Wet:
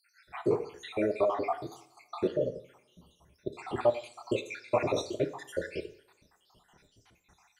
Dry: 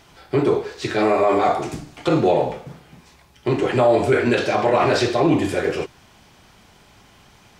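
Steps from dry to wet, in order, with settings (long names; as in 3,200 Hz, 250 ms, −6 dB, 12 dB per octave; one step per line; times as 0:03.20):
time-frequency cells dropped at random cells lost 75%
coupled-rooms reverb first 0.54 s, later 2.2 s, from −27 dB, DRR 9.5 dB
level −8.5 dB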